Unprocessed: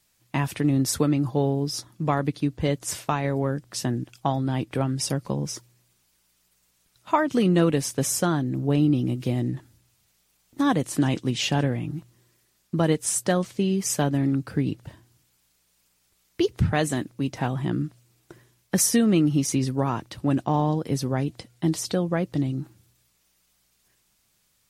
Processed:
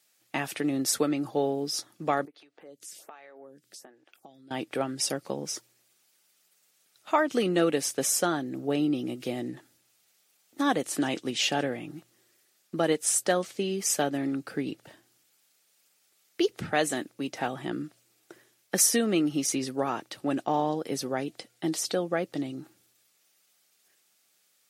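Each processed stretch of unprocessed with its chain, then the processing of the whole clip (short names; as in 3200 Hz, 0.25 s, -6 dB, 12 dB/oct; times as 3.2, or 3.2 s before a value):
2.25–4.51 HPF 190 Hz 6 dB/oct + compressor 5:1, threshold -42 dBFS + photocell phaser 1.3 Hz
whole clip: HPF 350 Hz 12 dB/oct; notch 1000 Hz, Q 6.2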